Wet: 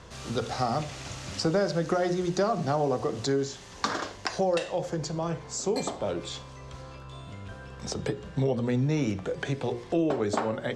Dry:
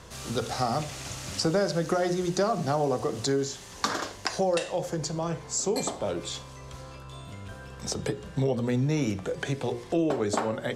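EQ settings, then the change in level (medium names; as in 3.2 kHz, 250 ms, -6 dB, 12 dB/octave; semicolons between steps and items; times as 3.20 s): distance through air 61 m; 0.0 dB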